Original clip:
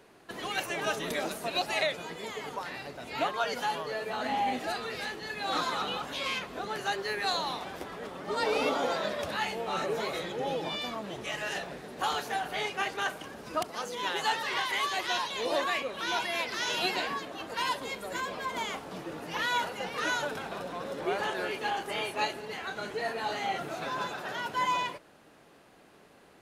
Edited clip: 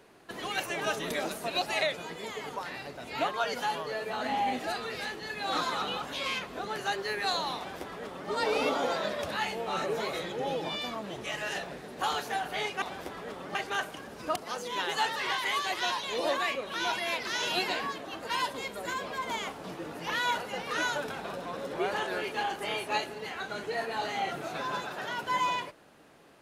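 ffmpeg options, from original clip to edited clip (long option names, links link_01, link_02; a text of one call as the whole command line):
ffmpeg -i in.wav -filter_complex "[0:a]asplit=3[link_01][link_02][link_03];[link_01]atrim=end=12.822[link_04];[link_02]atrim=start=7.568:end=8.302[link_05];[link_03]atrim=start=12.818[link_06];[link_04][link_05]acrossfade=duration=0.004:curve1=hsin:curve2=hsin[link_07];[link_07][link_06]acrossfade=duration=0.004:curve1=hsin:curve2=hsin" out.wav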